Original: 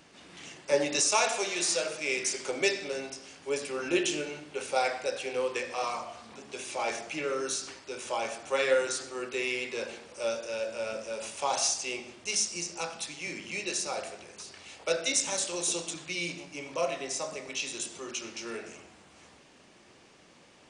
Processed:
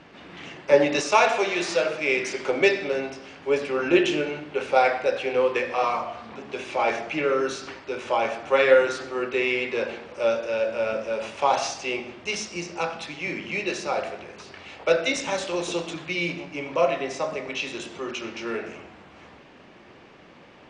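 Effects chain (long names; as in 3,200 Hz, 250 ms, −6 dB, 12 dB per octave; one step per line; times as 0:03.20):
low-pass filter 2,700 Hz 12 dB per octave
level +9 dB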